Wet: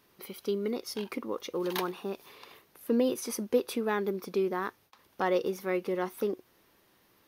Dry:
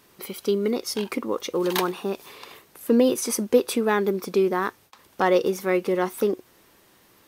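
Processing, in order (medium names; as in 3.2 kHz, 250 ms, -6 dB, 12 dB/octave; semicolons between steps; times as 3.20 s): peaking EQ 7.8 kHz -8.5 dB 0.41 oct; trim -8 dB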